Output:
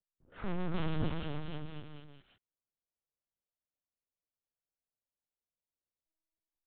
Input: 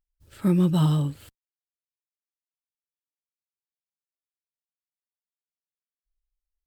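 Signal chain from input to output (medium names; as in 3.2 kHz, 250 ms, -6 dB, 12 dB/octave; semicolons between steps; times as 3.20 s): high-pass 330 Hz 6 dB/octave; overload inside the chain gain 35 dB; level rider gain up to 7 dB; peak limiter -32 dBFS, peak gain reduction 4 dB; level-controlled noise filter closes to 540 Hz, open at -37.5 dBFS; bouncing-ball echo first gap 290 ms, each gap 0.85×, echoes 5; LPC vocoder at 8 kHz pitch kept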